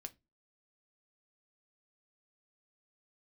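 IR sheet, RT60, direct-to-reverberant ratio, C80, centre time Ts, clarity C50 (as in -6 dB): 0.20 s, 7.5 dB, 32.0 dB, 3 ms, 22.0 dB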